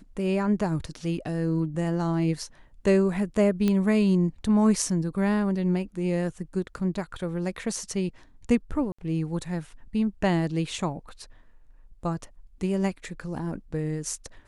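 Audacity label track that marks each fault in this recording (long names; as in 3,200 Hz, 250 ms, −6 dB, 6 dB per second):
3.680000	3.680000	click −13 dBFS
8.920000	8.980000	drop-out 65 ms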